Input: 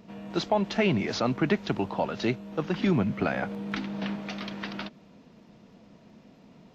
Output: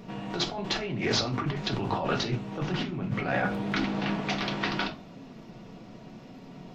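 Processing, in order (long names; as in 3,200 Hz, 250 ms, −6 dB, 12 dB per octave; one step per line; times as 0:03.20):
compressor whose output falls as the input rises −32 dBFS, ratio −1
on a send at −1 dB: convolution reverb RT60 0.35 s, pre-delay 3 ms
on the sum: highs frequency-modulated by the lows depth 0.17 ms
level +1.5 dB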